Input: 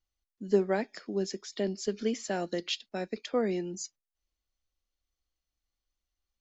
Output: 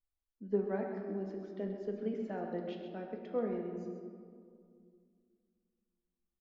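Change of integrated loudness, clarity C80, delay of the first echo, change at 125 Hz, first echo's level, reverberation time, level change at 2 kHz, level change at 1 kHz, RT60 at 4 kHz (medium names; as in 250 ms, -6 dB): -6.5 dB, 4.0 dB, 132 ms, -4.5 dB, -9.0 dB, 2.3 s, -11.5 dB, -6.5 dB, 1.1 s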